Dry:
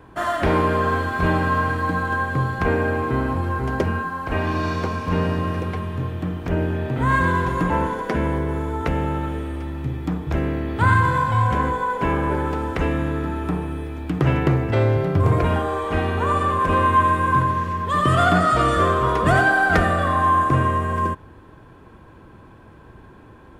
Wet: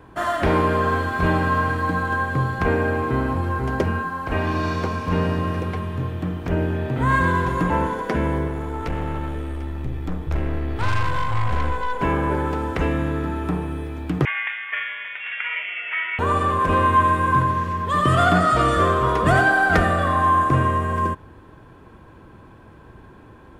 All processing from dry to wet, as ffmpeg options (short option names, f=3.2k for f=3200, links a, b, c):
-filter_complex "[0:a]asettb=1/sr,asplit=3[a][b][c];[a]atrim=end=8.484[d];[b]atrim=start=8.48:end=12.01,asetpts=PTS-STARTPTS,afade=t=in:d=0.004:c=qsin,afade=t=out:st=3.526:d=0.004:c=qsin,aeval=exprs='(tanh(11.2*val(0)+0.4)-tanh(0.4))/11.2':c=same,asubboost=boost=6:cutoff=69[e];[c]atrim=start=12.006[f];[d][e]acrossfade=d=0.004:c1=hsin:c2=qsin[g];[g][f]acrossfade=d=0.004:c1=qsin:c2=hsin,asettb=1/sr,asplit=3[h][i][j];[h]atrim=end=14.254[k];[i]atrim=start=14.25:end=16.19,asetpts=PTS-STARTPTS,afade=t=in:d=0.004:c=qsin,afade=t=out:st=1.936:d=0.004:c=qsin,acrossover=split=3000[l][m];[m]acompressor=threshold=-48dB:ratio=4:attack=1:release=60[n];[l][n]amix=inputs=2:normalize=0,highpass=f=1.8k:t=q:w=3.3,lowpass=f=3.2k:t=q:w=0.5098,lowpass=f=3.2k:t=q:w=0.6013,lowpass=f=3.2k:t=q:w=0.9,lowpass=f=3.2k:t=q:w=2.563,afreqshift=-3800[o];[j]atrim=start=16.186[p];[k][o]acrossfade=d=0.004:c1=hsin:c2=qsin[q];[q][p]acrossfade=d=0.004:c1=qsin:c2=hsin"